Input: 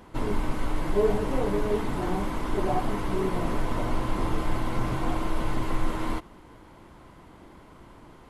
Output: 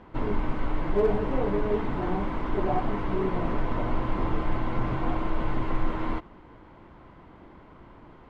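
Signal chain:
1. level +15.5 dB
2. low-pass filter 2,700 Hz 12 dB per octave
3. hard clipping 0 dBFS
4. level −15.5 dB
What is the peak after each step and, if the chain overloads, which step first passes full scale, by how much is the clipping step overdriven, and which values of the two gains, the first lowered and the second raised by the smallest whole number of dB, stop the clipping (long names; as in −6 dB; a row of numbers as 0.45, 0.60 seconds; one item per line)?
+3.5, +3.5, 0.0, −15.5 dBFS
step 1, 3.5 dB
step 1 +11.5 dB, step 4 −11.5 dB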